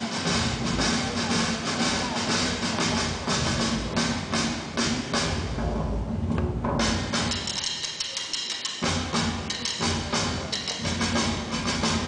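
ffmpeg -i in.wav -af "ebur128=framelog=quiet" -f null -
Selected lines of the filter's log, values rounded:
Integrated loudness:
  I:         -26.1 LUFS
  Threshold: -36.1 LUFS
Loudness range:
  LRA:         2.1 LU
  Threshold: -46.2 LUFS
  LRA low:   -27.1 LUFS
  LRA high:  -25.0 LUFS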